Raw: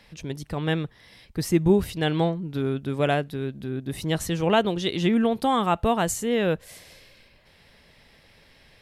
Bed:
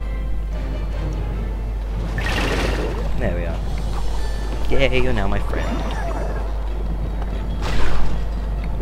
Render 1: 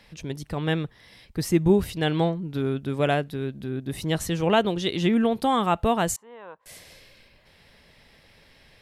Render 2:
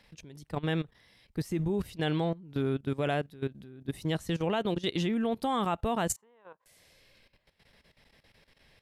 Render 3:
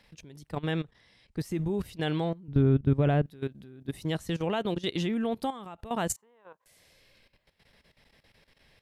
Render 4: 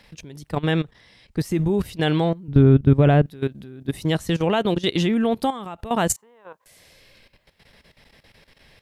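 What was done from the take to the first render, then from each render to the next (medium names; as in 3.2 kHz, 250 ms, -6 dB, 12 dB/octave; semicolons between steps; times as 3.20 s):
6.16–6.66 s: band-pass filter 1 kHz, Q 6.6
level held to a coarse grid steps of 14 dB; upward expansion 1.5:1, over -39 dBFS
0.71–1.39 s: low-pass 9.4 kHz 24 dB/octave; 2.48–3.26 s: RIAA curve playback; 5.50–5.91 s: compression 16:1, threshold -37 dBFS
trim +9 dB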